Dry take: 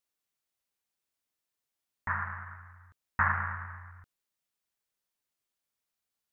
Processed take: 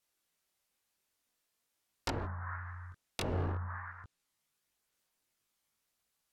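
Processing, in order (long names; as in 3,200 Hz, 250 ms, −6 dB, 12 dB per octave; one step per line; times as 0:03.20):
wrap-around overflow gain 27 dB
treble cut that deepens with the level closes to 570 Hz, closed at −34.5 dBFS
multi-voice chorus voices 2, 0.5 Hz, delay 20 ms, depth 2.7 ms
level +9 dB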